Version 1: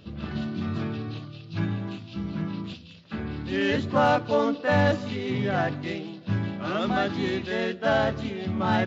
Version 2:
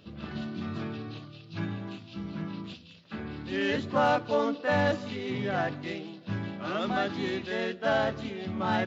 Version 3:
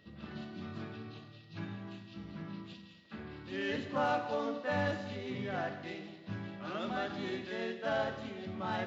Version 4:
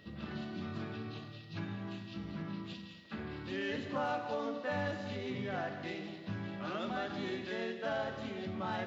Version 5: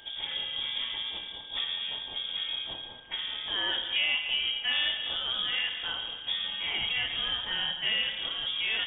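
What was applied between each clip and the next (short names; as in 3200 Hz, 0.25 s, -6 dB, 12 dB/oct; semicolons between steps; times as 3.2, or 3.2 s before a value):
low shelf 130 Hz -8 dB; gain -3 dB
Schroeder reverb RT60 1.2 s, combs from 31 ms, DRR 7.5 dB; whine 1900 Hz -59 dBFS; gain -8 dB
compressor 2:1, threshold -44 dBFS, peak gain reduction 9 dB; gain +5 dB
inverted band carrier 3500 Hz; gain +7 dB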